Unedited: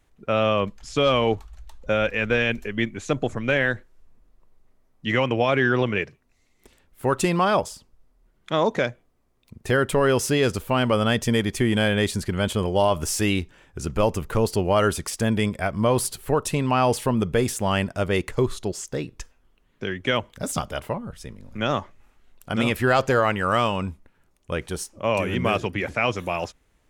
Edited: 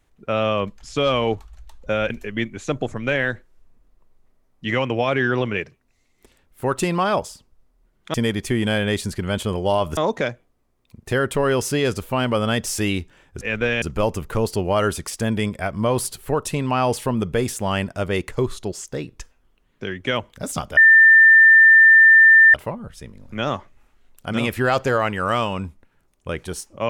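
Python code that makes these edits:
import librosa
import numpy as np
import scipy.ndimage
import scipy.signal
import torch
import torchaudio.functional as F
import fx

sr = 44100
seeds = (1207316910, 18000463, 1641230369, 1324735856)

y = fx.edit(x, sr, fx.move(start_s=2.1, length_s=0.41, to_s=13.82),
    fx.move(start_s=11.24, length_s=1.83, to_s=8.55),
    fx.insert_tone(at_s=20.77, length_s=1.77, hz=1790.0, db=-7.0), tone=tone)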